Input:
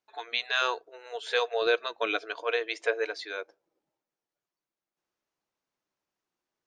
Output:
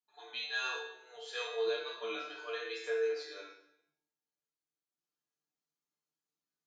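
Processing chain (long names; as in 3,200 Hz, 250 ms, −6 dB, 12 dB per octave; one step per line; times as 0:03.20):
high-pass filter 92 Hz
tuned comb filter 150 Hz, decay 0.52 s, harmonics all, mix 90%
convolution reverb RT60 0.70 s, pre-delay 3 ms, DRR −5.5 dB
level −4 dB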